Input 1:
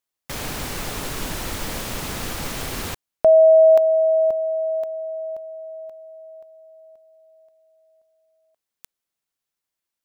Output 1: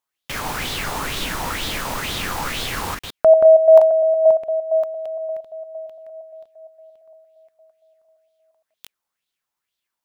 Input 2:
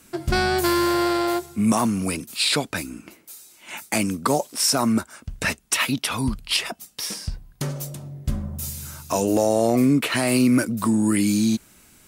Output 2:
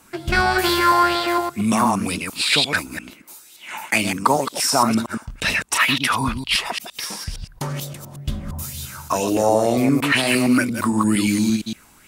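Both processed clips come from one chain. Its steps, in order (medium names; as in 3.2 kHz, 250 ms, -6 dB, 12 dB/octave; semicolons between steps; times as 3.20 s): chunks repeated in reverse 115 ms, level -5 dB; sweeping bell 2.1 Hz 870–3700 Hz +13 dB; trim -1 dB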